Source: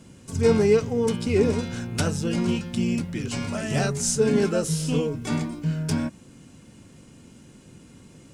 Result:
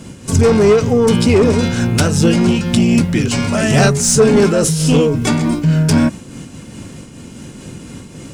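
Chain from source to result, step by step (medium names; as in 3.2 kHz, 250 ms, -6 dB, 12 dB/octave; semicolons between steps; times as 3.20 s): saturation -17.5 dBFS, distortion -13 dB; loudness maximiser +21 dB; random flutter of the level, depth 60%; trim -2 dB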